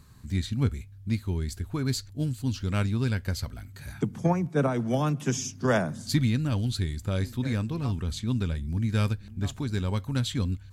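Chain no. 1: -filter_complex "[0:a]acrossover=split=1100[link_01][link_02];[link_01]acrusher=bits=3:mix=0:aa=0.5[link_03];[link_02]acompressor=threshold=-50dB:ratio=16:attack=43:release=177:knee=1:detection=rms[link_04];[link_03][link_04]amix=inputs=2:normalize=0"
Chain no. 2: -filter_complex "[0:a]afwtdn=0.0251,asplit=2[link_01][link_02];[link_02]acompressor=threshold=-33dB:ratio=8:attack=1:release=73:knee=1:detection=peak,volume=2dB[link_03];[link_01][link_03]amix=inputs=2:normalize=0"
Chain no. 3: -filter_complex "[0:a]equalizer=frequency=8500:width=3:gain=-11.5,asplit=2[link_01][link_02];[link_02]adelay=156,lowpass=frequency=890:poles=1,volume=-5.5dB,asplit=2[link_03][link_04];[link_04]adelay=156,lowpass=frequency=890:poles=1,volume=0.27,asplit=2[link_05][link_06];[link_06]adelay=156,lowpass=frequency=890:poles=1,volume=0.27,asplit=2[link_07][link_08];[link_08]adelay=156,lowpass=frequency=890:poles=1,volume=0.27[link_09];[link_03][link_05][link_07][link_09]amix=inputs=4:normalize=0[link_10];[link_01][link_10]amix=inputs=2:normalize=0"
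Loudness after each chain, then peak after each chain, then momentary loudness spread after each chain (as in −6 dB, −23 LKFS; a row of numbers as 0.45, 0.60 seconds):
−30.0, −26.5, −28.0 LKFS; −11.5, −10.0, −11.0 dBFS; 7, 6, 6 LU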